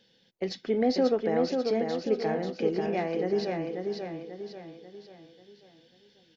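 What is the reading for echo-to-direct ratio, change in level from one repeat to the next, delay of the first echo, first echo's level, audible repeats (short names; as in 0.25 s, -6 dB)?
-3.5 dB, -7.0 dB, 0.54 s, -4.5 dB, 5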